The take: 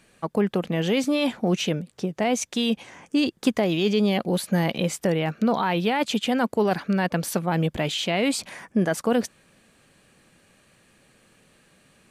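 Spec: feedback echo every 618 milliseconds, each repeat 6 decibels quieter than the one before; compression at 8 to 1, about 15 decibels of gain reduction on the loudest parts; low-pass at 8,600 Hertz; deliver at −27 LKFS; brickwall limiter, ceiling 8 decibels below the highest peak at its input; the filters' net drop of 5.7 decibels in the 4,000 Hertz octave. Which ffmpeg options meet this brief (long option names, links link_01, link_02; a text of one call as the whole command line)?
ffmpeg -i in.wav -af "lowpass=8600,equalizer=frequency=4000:width_type=o:gain=-8,acompressor=threshold=-33dB:ratio=8,alimiter=level_in=5.5dB:limit=-24dB:level=0:latency=1,volume=-5.5dB,aecho=1:1:618|1236|1854|2472|3090|3708:0.501|0.251|0.125|0.0626|0.0313|0.0157,volume=11.5dB" out.wav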